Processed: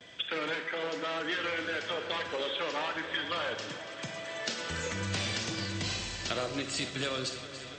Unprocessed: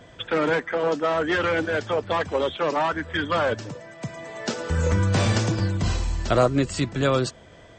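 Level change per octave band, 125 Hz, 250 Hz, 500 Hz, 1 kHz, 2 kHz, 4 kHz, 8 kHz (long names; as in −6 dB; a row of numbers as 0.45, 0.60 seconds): −16.5, −13.0, −12.5, −11.0, −6.0, −0.5, −3.5 decibels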